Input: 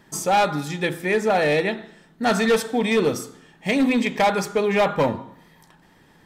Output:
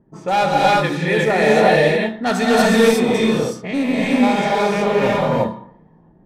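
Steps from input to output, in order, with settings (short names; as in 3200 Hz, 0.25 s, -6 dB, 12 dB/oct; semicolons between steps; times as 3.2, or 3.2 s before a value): 2.75–5.07 stepped spectrum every 0.1 s; low-pass opened by the level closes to 450 Hz, open at -18.5 dBFS; non-linear reverb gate 0.39 s rising, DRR -5 dB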